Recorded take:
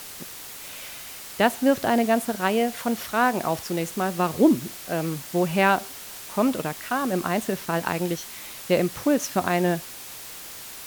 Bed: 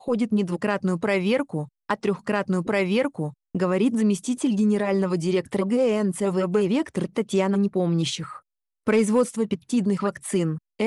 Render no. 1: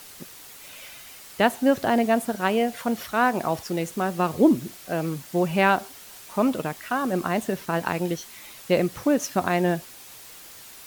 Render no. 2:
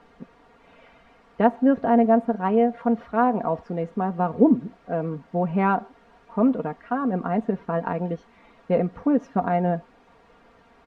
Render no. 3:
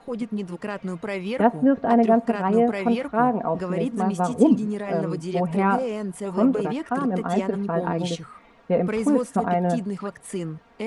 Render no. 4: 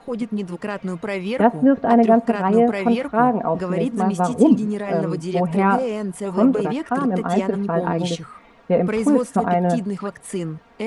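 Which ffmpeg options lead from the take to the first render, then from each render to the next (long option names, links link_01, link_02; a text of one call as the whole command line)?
ffmpeg -i in.wav -af "afftdn=noise_reduction=6:noise_floor=-40" out.wav
ffmpeg -i in.wav -af "lowpass=1100,aecho=1:1:4.3:0.63" out.wav
ffmpeg -i in.wav -i bed.wav -filter_complex "[1:a]volume=-6.5dB[link_01];[0:a][link_01]amix=inputs=2:normalize=0" out.wav
ffmpeg -i in.wav -af "volume=3.5dB,alimiter=limit=-3dB:level=0:latency=1" out.wav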